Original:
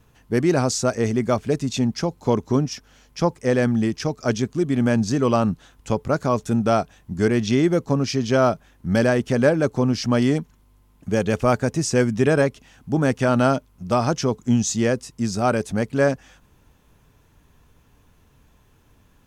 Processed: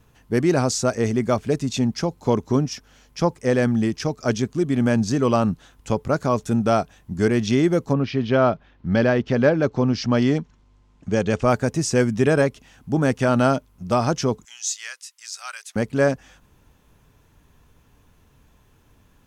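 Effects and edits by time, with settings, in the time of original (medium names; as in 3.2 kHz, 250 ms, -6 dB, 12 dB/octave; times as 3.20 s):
7.92–11.49 s: low-pass 3.5 kHz -> 8.3 kHz 24 dB/octave
14.45–15.76 s: Bessel high-pass 2.1 kHz, order 4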